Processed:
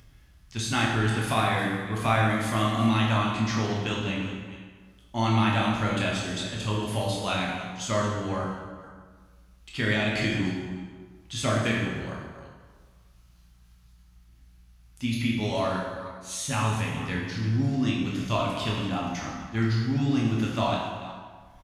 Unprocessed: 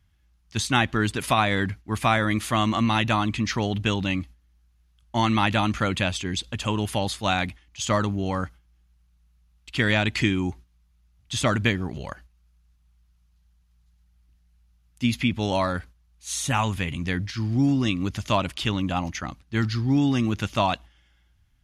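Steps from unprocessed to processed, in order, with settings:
delay that plays each chunk backwards 240 ms, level −13.5 dB
upward compression, threshold −36 dBFS
double-tracking delay 27 ms −6.5 dB
dense smooth reverb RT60 1.5 s, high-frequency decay 0.7×, DRR −2.5 dB
level −8 dB

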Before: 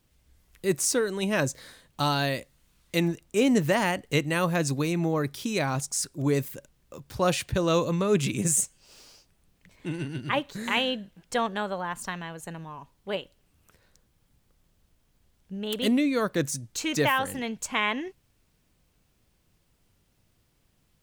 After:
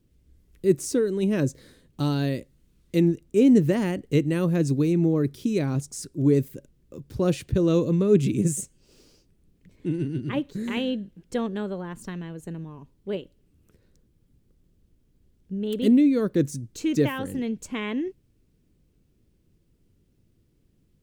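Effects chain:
low shelf with overshoot 540 Hz +11.5 dB, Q 1.5
level −7.5 dB

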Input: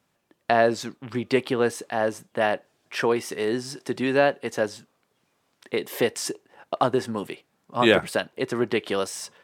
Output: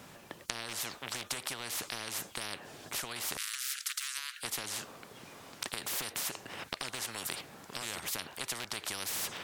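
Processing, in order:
loose part that buzzes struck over −26 dBFS, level −25 dBFS
0:03.37–0:04.43: Butterworth high-pass 1,400 Hz 72 dB per octave
downward compressor 4 to 1, threshold −29 dBFS, peak gain reduction 14 dB
every bin compressed towards the loudest bin 10 to 1

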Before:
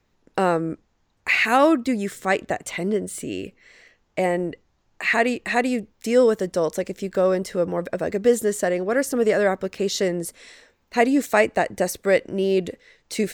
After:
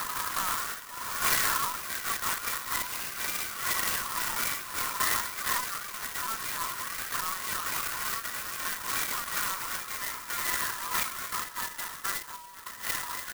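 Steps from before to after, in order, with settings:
compressor on every frequency bin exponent 0.6
upward compression, threshold −19 dBFS
brickwall limiter −10.5 dBFS, peak gain reduction 9 dB
downward compressor 6 to 1, threshold −25 dBFS, peak gain reduction 10 dB
linear-phase brick-wall band-pass 870–2,100 Hz
high-frequency loss of the air 470 metres
double-tracking delay 33 ms −3.5 dB
convolution reverb RT60 0.15 s, pre-delay 3 ms, DRR 7 dB
delay with pitch and tempo change per echo 166 ms, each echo +3 semitones, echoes 2
linear-prediction vocoder at 8 kHz pitch kept
flanger 0.55 Hz, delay 2.2 ms, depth 9.3 ms, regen +73%
converter with an unsteady clock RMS 0.1 ms
level +1.5 dB

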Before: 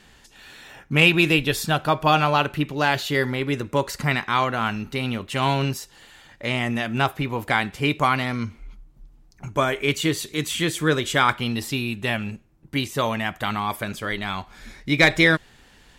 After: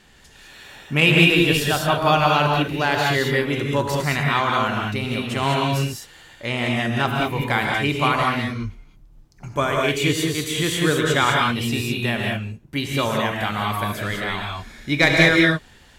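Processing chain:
reverb whose tail is shaped and stops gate 230 ms rising, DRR −0.5 dB
level −1 dB

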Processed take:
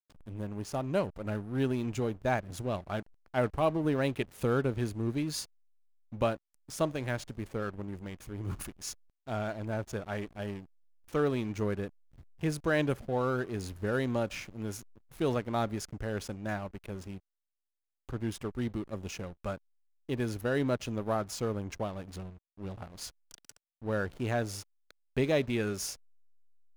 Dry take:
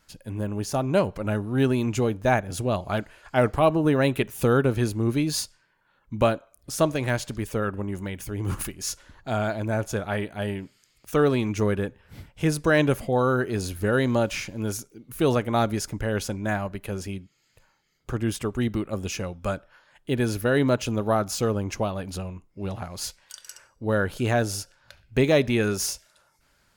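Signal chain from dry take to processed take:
slack as between gear wheels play −32.5 dBFS
level −8 dB

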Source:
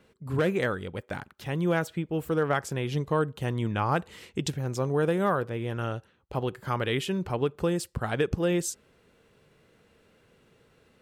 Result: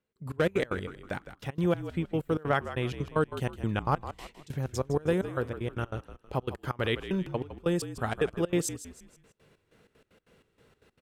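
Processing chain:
gate pattern "..xx.x.x.xx" 190 BPM −24 dB
echo with shifted repeats 159 ms, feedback 38%, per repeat −49 Hz, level −12 dB

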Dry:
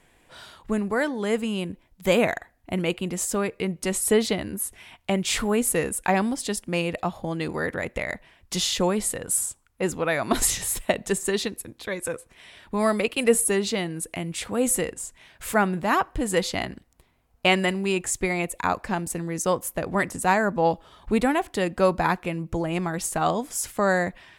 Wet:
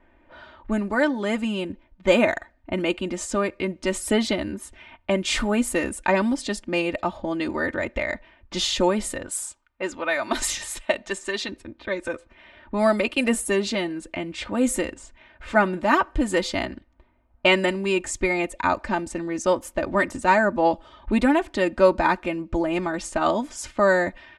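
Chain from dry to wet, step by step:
0:09.28–0:11.49: low-shelf EQ 440 Hz −11.5 dB
low-pass that shuts in the quiet parts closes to 1,700 Hz, open at −22 dBFS
high-frequency loss of the air 62 metres
comb filter 3.3 ms, depth 74%
level +1 dB

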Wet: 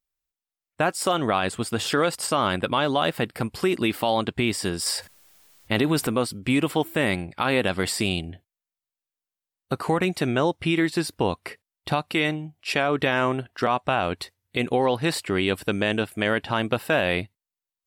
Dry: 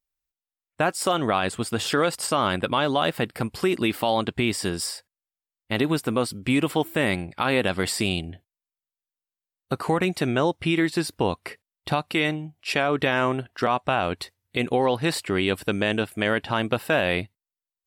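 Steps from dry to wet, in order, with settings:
0:04.86–0:06.07: envelope flattener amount 50%

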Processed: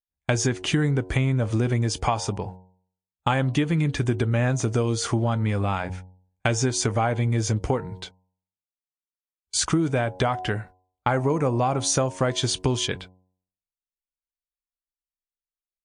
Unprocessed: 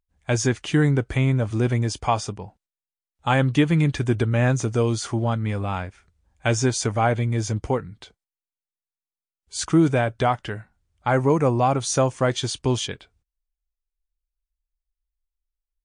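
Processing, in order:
noise gate −45 dBFS, range −31 dB
hum removal 92.11 Hz, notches 11
downward compressor 6 to 1, threshold −27 dBFS, peak gain reduction 14 dB
level +7 dB

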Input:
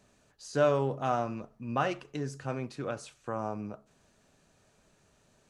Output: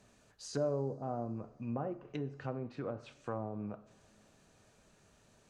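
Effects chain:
treble cut that deepens with the level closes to 550 Hz, closed at −29 dBFS
in parallel at +1 dB: downward compressor, threshold −41 dBFS, peak gain reduction 16 dB
on the sum: coupled-rooms reverb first 0.56 s, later 4.1 s, from −19 dB, DRR 13.5 dB
level −6.5 dB

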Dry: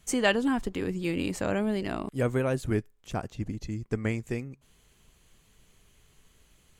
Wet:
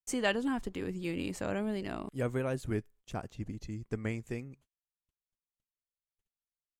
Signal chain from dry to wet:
noise gate −52 dBFS, range −43 dB
level −6 dB

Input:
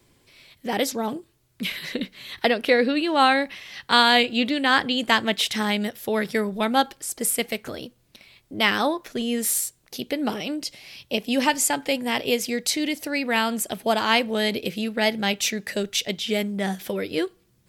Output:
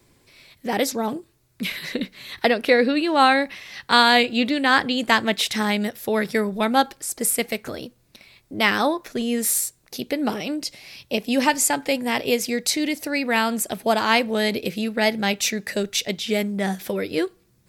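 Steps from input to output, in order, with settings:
parametric band 3,100 Hz −5 dB 0.26 octaves
level +2 dB

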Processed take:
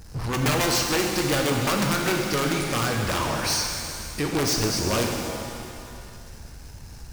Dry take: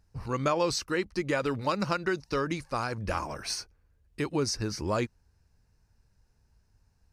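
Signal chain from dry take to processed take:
high-shelf EQ 3,500 Hz +5.5 dB
wrap-around overflow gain 20 dB
power curve on the samples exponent 0.5
reverb with rising layers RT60 2.4 s, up +7 semitones, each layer −8 dB, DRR 1 dB

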